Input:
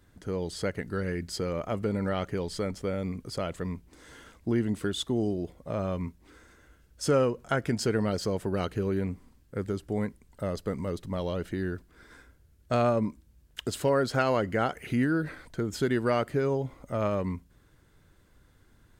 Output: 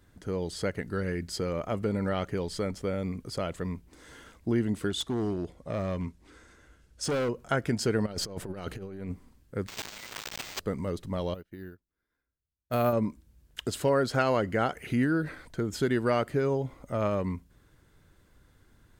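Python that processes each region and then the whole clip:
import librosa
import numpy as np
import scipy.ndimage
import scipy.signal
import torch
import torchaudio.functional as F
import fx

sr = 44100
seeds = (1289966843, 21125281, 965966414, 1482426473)

y = fx.chain(x, sr, fx.lowpass(hz=9500.0, slope=12),
    fx.high_shelf(hz=4600.0, db=3.0),
    fx.overload_stage(gain_db=26.0), at=(4.9, 7.29))
y = fx.chain(y, sr, fx.halfwave_gain(db=-3.0),
    fx.over_compress(threshold_db=-35.0, ratio=-0.5), at=(8.06, 9.12))
y = fx.chain(y, sr, fx.crossing_spikes(level_db=-26.5),
    fx.steep_highpass(hz=2000.0, slope=96),
    fx.resample_bad(factor=4, down='none', up='hold'), at=(9.67, 10.6))
y = fx.chain(y, sr, fx.resample_bad(factor=3, down='filtered', up='hold'),
    fx.upward_expand(threshold_db=-43.0, expansion=2.5), at=(11.34, 12.93))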